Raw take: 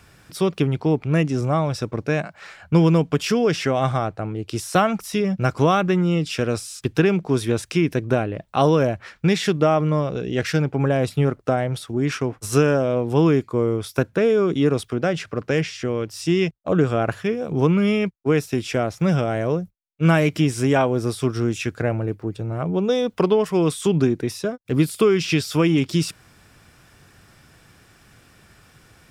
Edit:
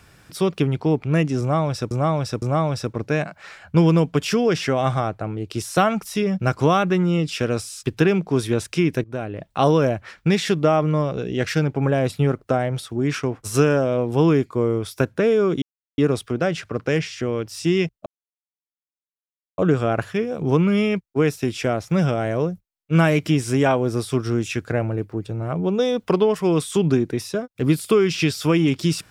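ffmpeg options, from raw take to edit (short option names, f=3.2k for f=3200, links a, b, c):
-filter_complex "[0:a]asplit=6[a][b][c][d][e][f];[a]atrim=end=1.912[g];[b]atrim=start=1.398:end=1.912[h];[c]atrim=start=1.398:end=8.02,asetpts=PTS-STARTPTS,afade=t=out:st=6.618:d=0.004:c=hsin:silence=0.125893[i];[d]atrim=start=8.02:end=14.6,asetpts=PTS-STARTPTS,afade=t=in:d=0.46:silence=0.125893,afade=t=out:st=6.576:d=0.004:c=hsin,apad=pad_dur=0.36[j];[e]atrim=start=14.6:end=16.68,asetpts=PTS-STARTPTS,afade=t=in:d=0.004:c=hsin,afade=t=out:st=2.076:d=0.004:c=hsin,apad=pad_dur=1.52[k];[f]atrim=start=16.68,asetpts=PTS-STARTPTS,afade=t=in:d=0.004:c=hsin[l];[g][h]acrossfade=d=0.004:c1=hsin:c2=hsin[m];[i][j][k][l]concat=n=4:v=0:a=1[n];[m][n]acrossfade=d=0.004:c1=hsin:c2=hsin"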